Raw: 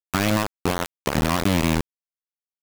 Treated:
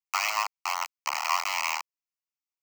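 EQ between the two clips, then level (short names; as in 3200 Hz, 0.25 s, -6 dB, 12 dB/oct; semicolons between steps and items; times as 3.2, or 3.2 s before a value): HPF 840 Hz 24 dB/oct; high shelf 11000 Hz -3.5 dB; fixed phaser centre 2400 Hz, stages 8; +2.0 dB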